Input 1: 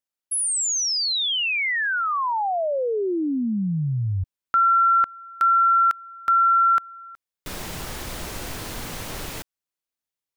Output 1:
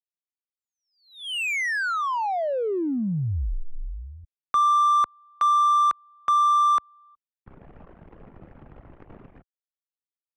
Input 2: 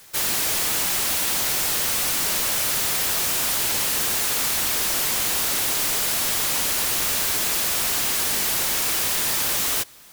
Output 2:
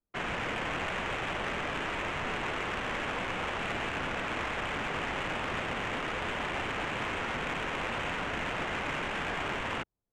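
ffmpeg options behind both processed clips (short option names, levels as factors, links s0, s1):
-af "anlmdn=39.8,highpass=f=160:t=q:w=0.5412,highpass=f=160:t=q:w=1.307,lowpass=f=3200:t=q:w=0.5176,lowpass=f=3200:t=q:w=0.7071,lowpass=f=3200:t=q:w=1.932,afreqshift=-180,adynamicsmooth=sensitivity=3:basefreq=1400,volume=0.841"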